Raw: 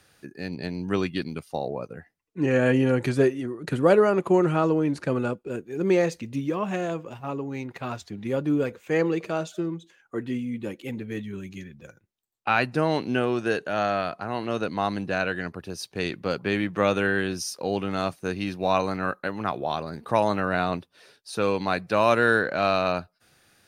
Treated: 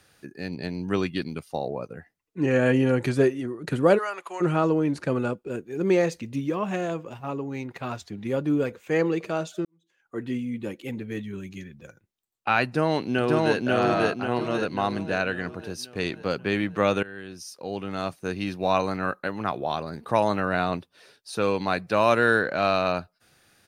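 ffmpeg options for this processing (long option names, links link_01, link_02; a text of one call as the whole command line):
ffmpeg -i in.wav -filter_complex "[0:a]asplit=3[link_01][link_02][link_03];[link_01]afade=type=out:start_time=3.97:duration=0.02[link_04];[link_02]highpass=1200,afade=type=in:start_time=3.97:duration=0.02,afade=type=out:start_time=4.4:duration=0.02[link_05];[link_03]afade=type=in:start_time=4.4:duration=0.02[link_06];[link_04][link_05][link_06]amix=inputs=3:normalize=0,asplit=2[link_07][link_08];[link_08]afade=type=in:start_time=12.64:duration=0.01,afade=type=out:start_time=13.6:duration=0.01,aecho=0:1:540|1080|1620|2160|2700|3240|3780:0.944061|0.47203|0.236015|0.118008|0.0590038|0.0295019|0.014751[link_09];[link_07][link_09]amix=inputs=2:normalize=0,asplit=3[link_10][link_11][link_12];[link_10]atrim=end=9.65,asetpts=PTS-STARTPTS,afade=type=out:start_time=9.646:duration=0.004:curve=hsin[link_13];[link_11]atrim=start=9.65:end=17.03,asetpts=PTS-STARTPTS,afade=type=in:duration=0.59:curve=qua,afade=type=out:start_time=7.376:duration=0.004:curve=hsin:silence=0.1[link_14];[link_12]atrim=start=17.03,asetpts=PTS-STARTPTS,afade=type=in:duration=1.43:silence=0.1[link_15];[link_13][link_14][link_15]concat=n=3:v=0:a=1" out.wav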